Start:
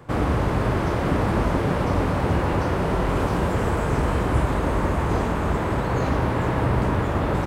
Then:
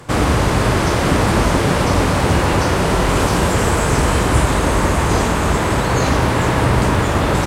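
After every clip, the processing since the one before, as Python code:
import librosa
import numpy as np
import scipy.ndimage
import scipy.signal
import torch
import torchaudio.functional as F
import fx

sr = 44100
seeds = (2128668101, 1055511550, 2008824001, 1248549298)

y = fx.peak_eq(x, sr, hz=7700.0, db=13.5, octaves=2.6)
y = F.gain(torch.from_numpy(y), 6.0).numpy()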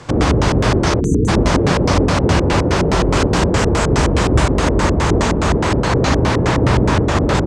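y = fx.spec_erase(x, sr, start_s=1.0, length_s=0.28, low_hz=480.0, high_hz=5900.0)
y = fx.filter_lfo_lowpass(y, sr, shape='square', hz=4.8, low_hz=410.0, high_hz=6000.0, q=1.4)
y = F.gain(torch.from_numpy(y), 1.0).numpy()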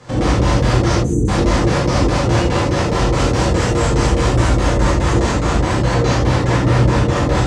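y = fx.rev_gated(x, sr, seeds[0], gate_ms=110, shape='flat', drr_db=-7.5)
y = F.gain(torch.from_numpy(y), -9.5).numpy()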